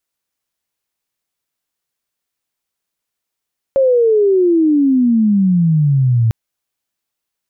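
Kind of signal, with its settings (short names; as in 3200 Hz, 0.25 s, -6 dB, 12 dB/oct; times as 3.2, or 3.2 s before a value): chirp logarithmic 550 Hz -> 110 Hz -8.5 dBFS -> -9.5 dBFS 2.55 s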